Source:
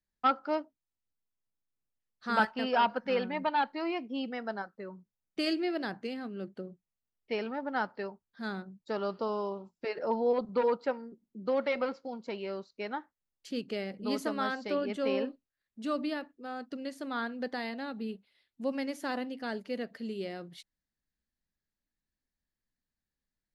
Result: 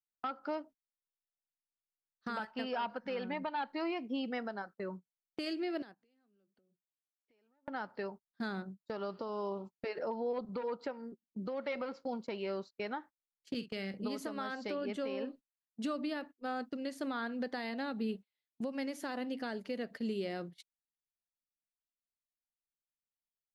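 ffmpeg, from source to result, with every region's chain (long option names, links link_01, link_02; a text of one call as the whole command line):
ffmpeg -i in.wav -filter_complex "[0:a]asettb=1/sr,asplit=3[link_01][link_02][link_03];[link_01]atrim=end=5.824[link_04];[link_02]atrim=start=5.82:end=7.68,asetpts=PTS-STARTPTS,afade=type=in:duration=0.004:curve=qsin,afade=type=out:start_time=1.856:duration=0.004:curve=qsin,highpass=150,acompressor=threshold=-50dB:ratio=10:attack=3.2:release=140:knee=1:detection=peak[link_05];[link_03]atrim=start=7.676[link_06];[link_04][link_05]acrossfade=duration=0.004:curve1=hsin:curve2=qsin[link_07];[link_07][link_06]acrossfade=duration=0.004:curve1=qsin:curve2=hsin,asettb=1/sr,asplit=3[link_08][link_09][link_10];[link_08]atrim=end=13.544[link_11];[link_09]atrim=start=13.54:end=13.94,asetpts=PTS-STARTPTS,afade=type=in:duration=0.004:curve=qsin,afade=type=out:start_time=0.396:duration=0.004:curve=qsin,equalizer=frequency=550:width=0.76:gain=-7.5,agate=range=-18dB:threshold=-44dB:ratio=16:release=100:detection=peak,asplit=2[link_12][link_13];[link_13]adelay=46,volume=-13dB[link_14];[link_12][link_14]amix=inputs=2:normalize=0,atrim=end_sample=17640[link_15];[link_10]atrim=start=13.936[link_16];[link_11][link_15]acrossfade=duration=0.004:curve1=hsin:curve2=qsin[link_17];[link_17][link_16]acrossfade=duration=0.004:curve1=qsin:curve2=hsin,agate=range=-25dB:threshold=-47dB:ratio=16:detection=peak,acompressor=threshold=-33dB:ratio=6,alimiter=level_in=7.5dB:limit=-24dB:level=0:latency=1:release=341,volume=-7.5dB,volume=3.5dB" out.wav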